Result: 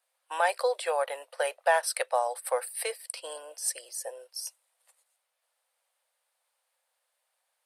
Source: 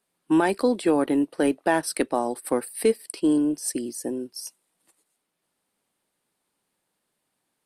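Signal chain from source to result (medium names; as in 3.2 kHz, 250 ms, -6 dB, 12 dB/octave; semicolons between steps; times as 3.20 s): Chebyshev high-pass 510 Hz, order 6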